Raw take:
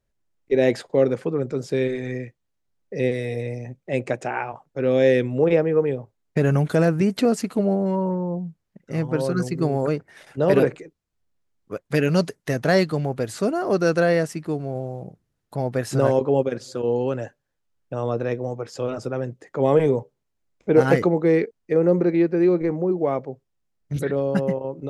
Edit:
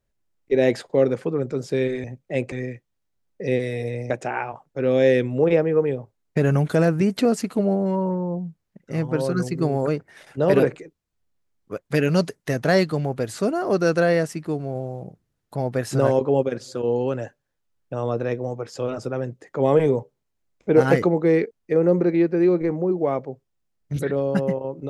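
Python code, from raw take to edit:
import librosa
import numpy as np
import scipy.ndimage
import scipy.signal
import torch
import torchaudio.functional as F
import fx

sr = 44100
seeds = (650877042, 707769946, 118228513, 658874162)

y = fx.edit(x, sr, fx.move(start_s=3.62, length_s=0.48, to_s=2.04), tone=tone)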